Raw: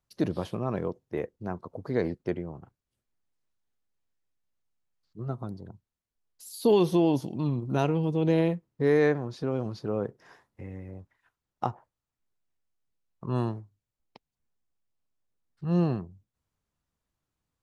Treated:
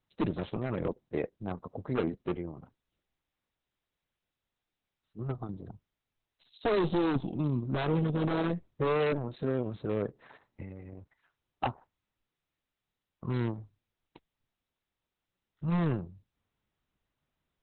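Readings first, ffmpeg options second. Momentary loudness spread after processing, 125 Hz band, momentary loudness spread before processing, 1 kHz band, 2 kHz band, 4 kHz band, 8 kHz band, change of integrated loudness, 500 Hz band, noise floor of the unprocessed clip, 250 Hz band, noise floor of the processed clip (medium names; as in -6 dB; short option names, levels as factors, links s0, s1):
16 LU, -3.0 dB, 19 LU, -1.5 dB, -2.0 dB, -2.0 dB, under -25 dB, -4.0 dB, -5.0 dB, under -85 dBFS, -4.0 dB, under -85 dBFS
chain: -af "aeval=exprs='0.0944*(abs(mod(val(0)/0.0944+3,4)-2)-1)':c=same" -ar 48000 -c:a libopus -b:a 6k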